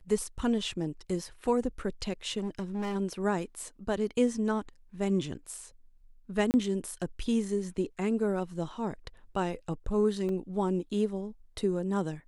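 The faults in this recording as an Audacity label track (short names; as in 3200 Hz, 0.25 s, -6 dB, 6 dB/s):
2.380000	2.960000	clipped -29.5 dBFS
6.510000	6.540000	gap 29 ms
10.290000	10.290000	gap 2.4 ms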